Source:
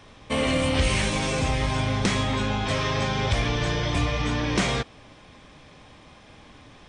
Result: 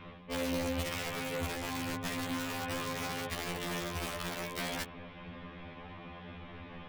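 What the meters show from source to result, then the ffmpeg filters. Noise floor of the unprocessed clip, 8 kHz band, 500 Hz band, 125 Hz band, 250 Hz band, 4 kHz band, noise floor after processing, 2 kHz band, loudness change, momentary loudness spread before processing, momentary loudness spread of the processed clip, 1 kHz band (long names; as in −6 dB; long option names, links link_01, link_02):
−51 dBFS, −8.5 dB, −10.5 dB, −16.5 dB, −10.5 dB, −11.5 dB, −49 dBFS, −10.5 dB, −12.0 dB, 3 LU, 13 LU, −10.5 dB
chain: -af "areverse,acompressor=threshold=-34dB:ratio=16,areverse,lowpass=frequency=3100:width=0.5412,lowpass=frequency=3100:width=1.3066,aeval=exprs='(mod(33.5*val(0)+1,2)-1)/33.5':channel_layout=same,aeval=exprs='val(0)+0.00355*(sin(2*PI*60*n/s)+sin(2*PI*2*60*n/s)/2+sin(2*PI*3*60*n/s)/3+sin(2*PI*4*60*n/s)/4+sin(2*PI*5*60*n/s)/5)':channel_layout=same,afftfilt=real='re*2*eq(mod(b,4),0)':imag='im*2*eq(mod(b,4),0)':win_size=2048:overlap=0.75,volume=4dB"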